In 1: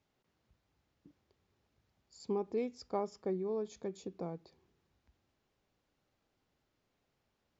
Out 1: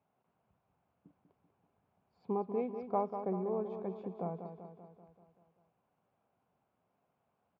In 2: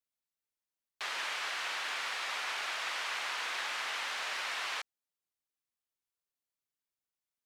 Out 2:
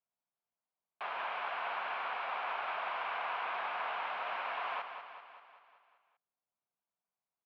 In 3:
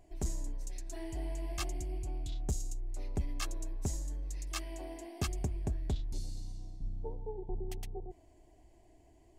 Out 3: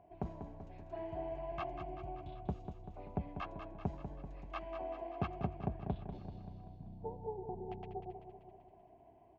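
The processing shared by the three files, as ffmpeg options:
-af "highpass=110,equalizer=f=180:t=q:w=4:g=4,equalizer=f=320:t=q:w=4:g=-6,equalizer=f=710:t=q:w=4:g=8,equalizer=f=1000:t=q:w=4:g=5,equalizer=f=1900:t=q:w=4:g=-9,lowpass=f=2400:w=0.5412,lowpass=f=2400:w=1.3066,aecho=1:1:193|386|579|772|965|1158|1351:0.376|0.218|0.126|0.0733|0.0425|0.0247|0.0143"

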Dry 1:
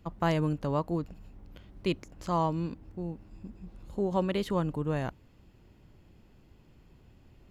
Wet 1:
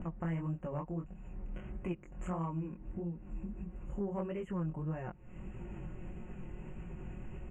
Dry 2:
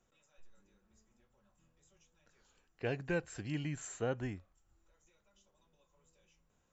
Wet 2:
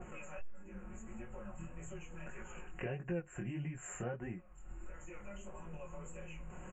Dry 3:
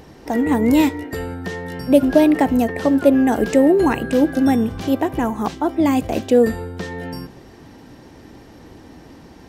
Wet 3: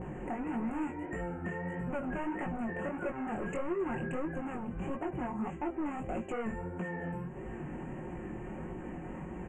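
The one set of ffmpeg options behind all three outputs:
-af "asoftclip=type=hard:threshold=0.112,lowshelf=f=220:g=4,aecho=1:1:5.5:0.62,acompressor=mode=upward:threshold=0.0501:ratio=2.5,lowpass=f=7300:w=0.5412,lowpass=f=7300:w=1.3066,acompressor=threshold=0.00794:ratio=2,flanger=delay=17:depth=8:speed=1.6,asoftclip=type=tanh:threshold=0.0335,asuperstop=centerf=4500:order=12:qfactor=1.1,adynamicequalizer=threshold=0.00141:dfrequency=1900:dqfactor=0.7:tfrequency=1900:tqfactor=0.7:attack=5:release=100:ratio=0.375:range=1.5:mode=cutabove:tftype=highshelf,volume=1.33"

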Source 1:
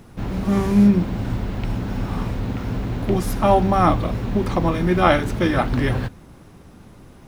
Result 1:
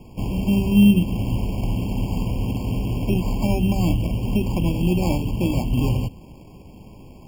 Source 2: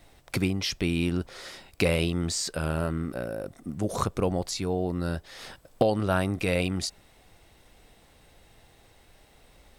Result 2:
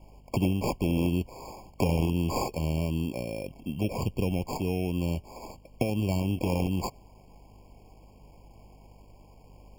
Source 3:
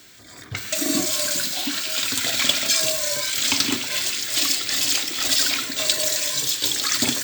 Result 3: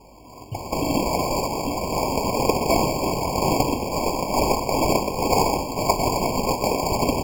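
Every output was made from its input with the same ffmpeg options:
-filter_complex "[0:a]adynamicequalizer=threshold=0.0178:dfrequency=5900:dqfactor=2.5:tfrequency=5900:tqfactor=2.5:attack=5:release=100:ratio=0.375:range=2:mode=boostabove:tftype=bell,acrossover=split=310|2200[s0][s1][s2];[s1]acompressor=threshold=0.0178:ratio=6[s3];[s0][s3][s2]amix=inputs=3:normalize=0,aeval=exprs='val(0)+0.00178*(sin(2*PI*50*n/s)+sin(2*PI*2*50*n/s)/2+sin(2*PI*3*50*n/s)/3+sin(2*PI*4*50*n/s)/4+sin(2*PI*5*50*n/s)/5)':c=same,acrusher=samples=15:mix=1:aa=0.000001,afftfilt=real='re*eq(mod(floor(b*sr/1024/1100),2),0)':imag='im*eq(mod(floor(b*sr/1024/1100),2),0)':win_size=1024:overlap=0.75,volume=1.19"

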